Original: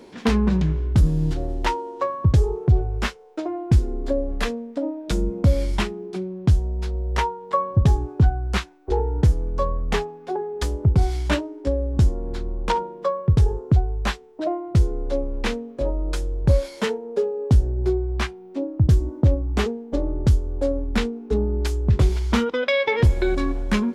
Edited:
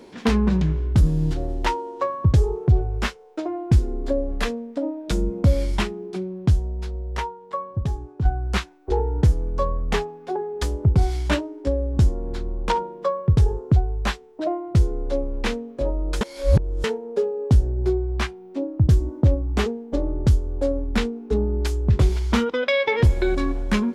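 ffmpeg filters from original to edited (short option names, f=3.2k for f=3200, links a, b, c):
-filter_complex "[0:a]asplit=4[a][b][c][d];[a]atrim=end=8.25,asetpts=PTS-STARTPTS,afade=t=out:st=6.35:d=1.9:c=qua:silence=0.354813[e];[b]atrim=start=8.25:end=16.212,asetpts=PTS-STARTPTS,afade=t=in:d=0.004:c=hsin:silence=0.354813[f];[c]atrim=start=16.208:end=16.842,asetpts=PTS-STARTPTS,areverse[g];[d]atrim=start=16.838[h];[e][f]concat=n=2:v=0:a=1[i];[i][g]acrossfade=d=0.004:c1=hsin:c2=hsin[j];[j][h]acrossfade=d=0.004:c1=hsin:c2=hsin"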